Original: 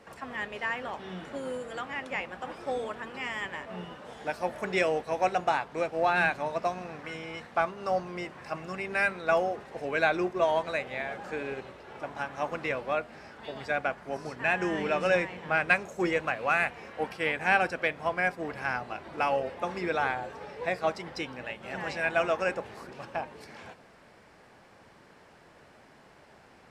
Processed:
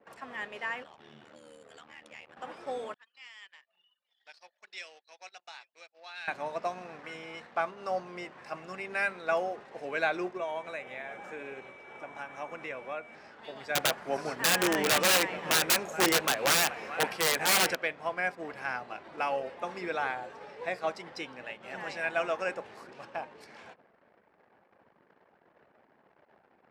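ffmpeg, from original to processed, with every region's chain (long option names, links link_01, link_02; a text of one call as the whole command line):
ffmpeg -i in.wav -filter_complex "[0:a]asettb=1/sr,asplit=3[link_01][link_02][link_03];[link_01]atrim=end=0.834[link_04];[link_02]atrim=start=0.83:end=2.37,asetpts=PTS-STARTPTS,afade=type=in:duration=0.004:curve=qsin,afade=type=out:start_time=1.536:duration=0.004:curve=qsin,acrossover=split=140|3000[link_05][link_06][link_07];[link_06]acompressor=threshold=-45dB:ratio=5:attack=3.2:release=140:knee=2.83:detection=peak[link_08];[link_05][link_08][link_07]amix=inputs=3:normalize=0,aeval=exprs='val(0)*sin(2*PI*38*n/s)':channel_layout=same[link_09];[link_03]atrim=start=2.366[link_10];[link_04][link_09]acrossfade=duration=0.004:curve1=hsin:curve2=qsin[link_11];[link_11][link_10]acrossfade=duration=0.004:curve1=qsin:curve2=hsin,asettb=1/sr,asplit=3[link_12][link_13][link_14];[link_12]atrim=end=2.944[link_15];[link_13]atrim=start=2.94:end=6.28,asetpts=PTS-STARTPTS,afade=type=in:duration=0.004:curve=qsin,afade=type=out:start_time=3.336:duration=0.004:curve=qsin,bandpass=frequency=4500:width_type=q:width=2.1,aecho=1:1:836:0.1,atrim=end_sample=147294[link_16];[link_14]atrim=start=6.276[link_17];[link_15][link_16]acrossfade=duration=0.004:curve1=hsin:curve2=qsin[link_18];[link_18][link_17]acrossfade=duration=0.004:curve1=qsin:curve2=hsin,asettb=1/sr,asplit=3[link_19][link_20][link_21];[link_19]atrim=end=10.374[link_22];[link_20]atrim=start=10.37:end=13.15,asetpts=PTS-STARTPTS,afade=type=in:duration=0.004:curve=qsin,afade=type=out:start_time=2.776:duration=0.004:curve=qsin,equalizer=frequency=4500:width_type=o:width=0.21:gain=-14.5,acompressor=threshold=-37dB:ratio=1.5:attack=3.2:release=140:knee=1:detection=peak,aeval=exprs='val(0)+0.00398*sin(2*PI*2300*n/s)':channel_layout=same[link_23];[link_21]atrim=start=13.146[link_24];[link_22][link_23]acrossfade=duration=0.004:curve1=hsin:curve2=qsin[link_25];[link_25][link_24]acrossfade=duration=0.004:curve1=qsin:curve2=hsin,asettb=1/sr,asplit=3[link_26][link_27][link_28];[link_26]atrim=end=13.754[link_29];[link_27]atrim=start=13.75:end=17.75,asetpts=PTS-STARTPTS,afade=type=in:duration=0.004:curve=qsin,afade=type=out:start_time=3.996:duration=0.004:curve=qsin,aecho=1:1:426:0.126,atrim=end_sample=176400,acontrast=88,aeval=exprs='(mod(5.31*val(0)+1,2)-1)/5.31':channel_layout=same[link_30];[link_28]atrim=start=17.746[link_31];[link_29][link_30]acrossfade=duration=0.004:curve1=hsin:curve2=qsin[link_32];[link_32][link_31]acrossfade=duration=0.004:curve1=qsin:curve2=hsin,anlmdn=0.001,highpass=frequency=280:poles=1,volume=-3dB" out.wav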